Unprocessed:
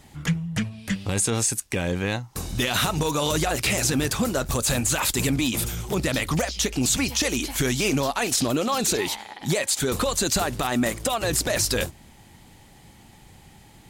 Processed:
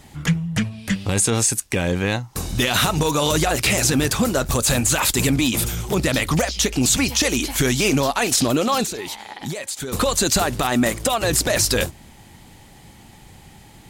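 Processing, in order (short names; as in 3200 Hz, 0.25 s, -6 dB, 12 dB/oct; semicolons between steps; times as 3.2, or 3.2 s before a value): 8.83–9.93 compressor 6:1, threshold -31 dBFS, peak gain reduction 11.5 dB; gain +4.5 dB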